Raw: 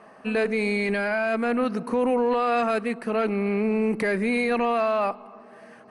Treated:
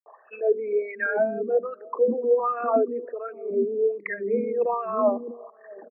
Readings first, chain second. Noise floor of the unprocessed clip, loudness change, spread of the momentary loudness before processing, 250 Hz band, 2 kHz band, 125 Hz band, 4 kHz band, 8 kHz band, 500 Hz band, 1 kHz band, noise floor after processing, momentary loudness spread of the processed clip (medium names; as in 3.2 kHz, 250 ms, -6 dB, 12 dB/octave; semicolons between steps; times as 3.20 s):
-49 dBFS, -1.0 dB, 4 LU, -8.0 dB, -5.5 dB, under -10 dB, under -35 dB, no reading, +1.5 dB, -3.0 dB, -55 dBFS, 11 LU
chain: resonances exaggerated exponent 3; wah-wah 1.3 Hz 260–1700 Hz, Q 3.4; three bands offset in time highs, mids, lows 60/710 ms, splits 320/6000 Hz; trim +8 dB